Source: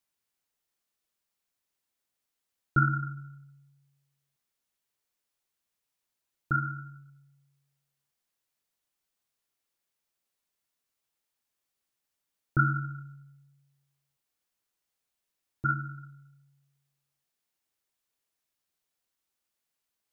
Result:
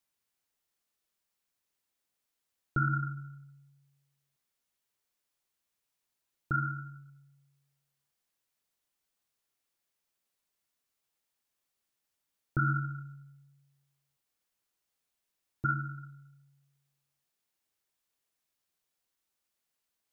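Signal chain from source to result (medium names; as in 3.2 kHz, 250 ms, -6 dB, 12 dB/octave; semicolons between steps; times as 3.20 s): peak limiter -19.5 dBFS, peak gain reduction 8 dB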